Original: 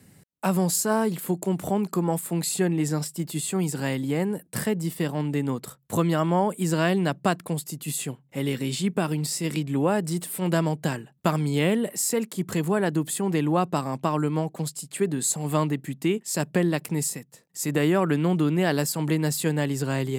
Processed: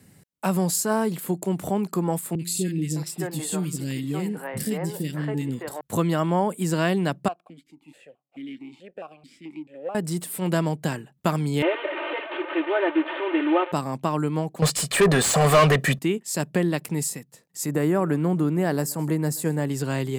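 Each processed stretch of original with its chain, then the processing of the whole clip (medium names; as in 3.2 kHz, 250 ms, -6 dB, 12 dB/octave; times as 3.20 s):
2.35–5.81 s: de-hum 172.5 Hz, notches 29 + three bands offset in time lows, highs, mids 40/610 ms, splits 400/2100 Hz
7.28–9.95 s: partial rectifier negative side -12 dB + stepped vowel filter 4.6 Hz
11.62–13.72 s: one-bit delta coder 16 kbps, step -26 dBFS + brick-wall FIR high-pass 290 Hz + comb 3.3 ms, depth 97%
14.62–15.99 s: comb 1.7 ms, depth 76% + overdrive pedal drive 31 dB, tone 2.6 kHz, clips at -8 dBFS
17.66–19.70 s: peaking EQ 3.2 kHz -11.5 dB 1.2 oct + delay 129 ms -22.5 dB
whole clip: none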